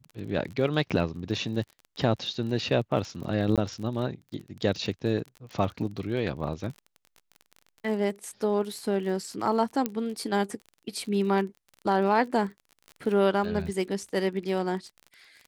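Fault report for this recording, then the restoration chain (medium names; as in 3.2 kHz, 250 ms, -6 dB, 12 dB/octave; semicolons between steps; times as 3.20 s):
crackle 35 per s -36 dBFS
3.56–3.58 s: dropout 17 ms
9.86 s: pop -13 dBFS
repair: de-click; interpolate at 3.56 s, 17 ms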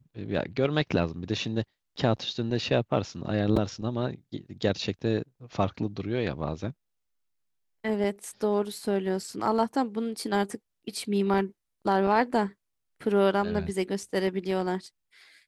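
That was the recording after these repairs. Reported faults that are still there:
nothing left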